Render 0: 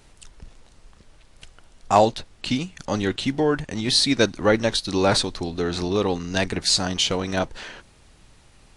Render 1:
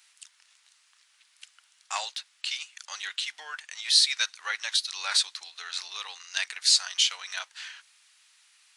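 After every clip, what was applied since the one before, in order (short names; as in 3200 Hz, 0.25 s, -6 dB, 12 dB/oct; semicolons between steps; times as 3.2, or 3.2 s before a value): Bessel high-pass 2000 Hz, order 4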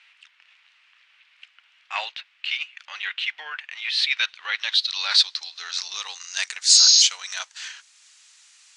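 transient shaper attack -7 dB, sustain -3 dB; spectral repair 6.76–7, 1600–6700 Hz before; low-pass sweep 2600 Hz -> 7100 Hz, 3.94–6.29; gain +4.5 dB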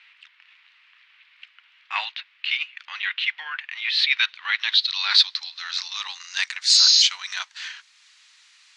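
graphic EQ 250/500/1000/2000/4000/8000 Hz +5/-10/+8/+7/+7/-5 dB; gain -5.5 dB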